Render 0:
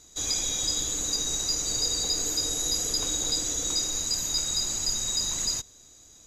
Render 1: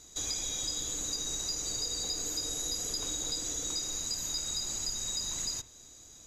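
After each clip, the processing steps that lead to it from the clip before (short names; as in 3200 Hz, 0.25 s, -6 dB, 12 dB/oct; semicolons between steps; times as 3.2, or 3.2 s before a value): compressor 2.5:1, threshold -35 dBFS, peak gain reduction 8.5 dB; reverb, pre-delay 37 ms, DRR 13 dB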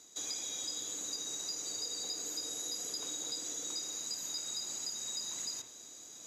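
HPF 230 Hz 12 dB/oct; reverse; upward compressor, threshold -38 dBFS; reverse; gain -4.5 dB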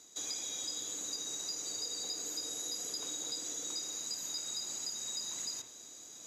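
nothing audible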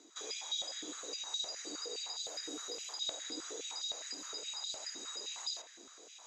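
air absorption 98 m; stepped high-pass 9.7 Hz 300–3700 Hz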